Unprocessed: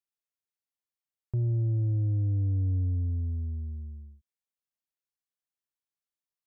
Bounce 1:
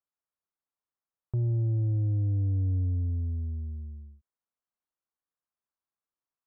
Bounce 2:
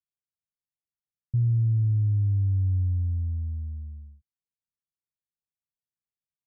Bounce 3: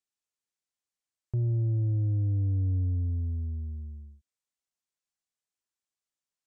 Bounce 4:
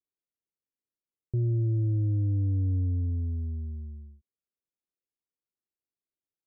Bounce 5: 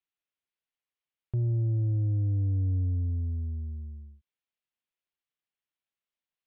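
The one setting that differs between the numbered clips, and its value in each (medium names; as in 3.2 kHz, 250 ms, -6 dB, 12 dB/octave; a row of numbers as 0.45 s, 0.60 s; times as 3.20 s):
resonant low-pass, frequency: 1.2 kHz, 150 Hz, 7.8 kHz, 400 Hz, 3 kHz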